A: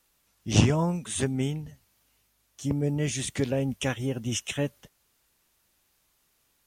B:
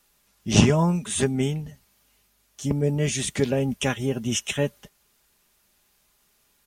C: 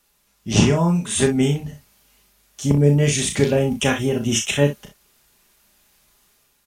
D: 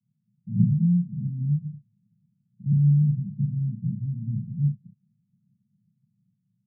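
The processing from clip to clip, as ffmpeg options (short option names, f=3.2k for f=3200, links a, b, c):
-af "aecho=1:1:4.9:0.37,volume=4dB"
-af "dynaudnorm=f=120:g=7:m=5dB,aecho=1:1:35|62:0.501|0.282"
-af "acrusher=samples=35:mix=1:aa=0.000001:lfo=1:lforange=21:lforate=0.58,asuperpass=centerf=150:order=12:qfactor=1.4,volume=-1.5dB"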